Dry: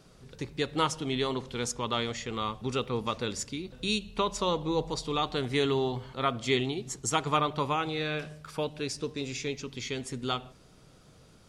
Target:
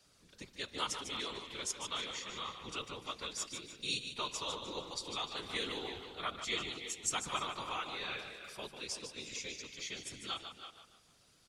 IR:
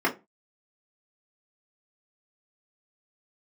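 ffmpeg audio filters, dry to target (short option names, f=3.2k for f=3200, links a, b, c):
-filter_complex "[0:a]tiltshelf=f=1.3k:g=-7,asplit=2[a][b];[b]aecho=0:1:149|298|447|596:0.376|0.132|0.046|0.0161[c];[a][c]amix=inputs=2:normalize=0,afftfilt=real='hypot(re,im)*cos(2*PI*random(0))':imag='hypot(re,im)*sin(2*PI*random(1))':win_size=512:overlap=0.75,adynamicequalizer=threshold=0.00224:dfrequency=160:dqfactor=0.76:tfrequency=160:tqfactor=0.76:attack=5:release=100:ratio=0.375:range=2:mode=cutabove:tftype=bell,asplit=2[d][e];[e]adelay=330,highpass=300,lowpass=3.4k,asoftclip=type=hard:threshold=-24.5dB,volume=-9dB[f];[d][f]amix=inputs=2:normalize=0,volume=-4dB"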